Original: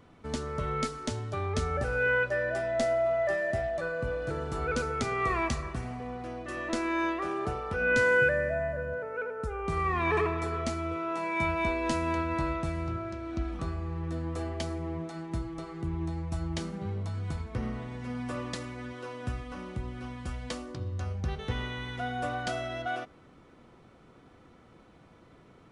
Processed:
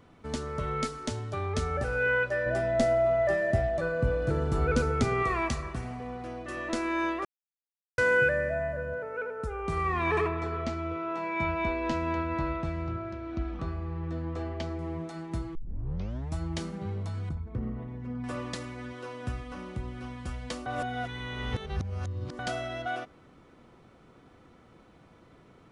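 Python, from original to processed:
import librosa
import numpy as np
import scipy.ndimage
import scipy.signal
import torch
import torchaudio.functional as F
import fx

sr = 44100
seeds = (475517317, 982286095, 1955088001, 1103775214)

y = fx.low_shelf(x, sr, hz=400.0, db=9.0, at=(2.46, 5.23))
y = fx.air_absorb(y, sr, metres=130.0, at=(10.28, 14.79))
y = fx.envelope_sharpen(y, sr, power=1.5, at=(17.29, 18.24))
y = fx.edit(y, sr, fx.silence(start_s=7.25, length_s=0.73),
    fx.tape_start(start_s=15.55, length_s=0.8),
    fx.reverse_span(start_s=20.66, length_s=1.73), tone=tone)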